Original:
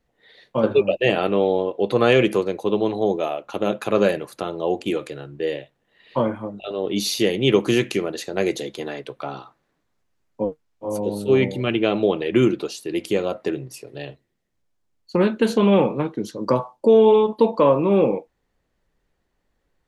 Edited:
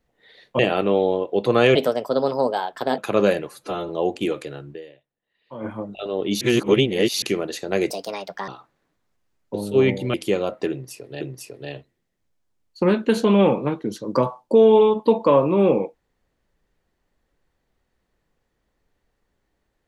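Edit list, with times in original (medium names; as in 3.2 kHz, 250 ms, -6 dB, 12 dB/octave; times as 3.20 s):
0.59–1.05 s: delete
2.21–3.76 s: speed 126%
4.28–4.54 s: stretch 1.5×
5.38–6.31 s: dip -17.5 dB, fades 0.31 s exponential
7.06–7.87 s: reverse
8.55–9.35 s: speed 138%
10.41–11.08 s: delete
11.68–12.97 s: delete
13.54–14.04 s: loop, 2 plays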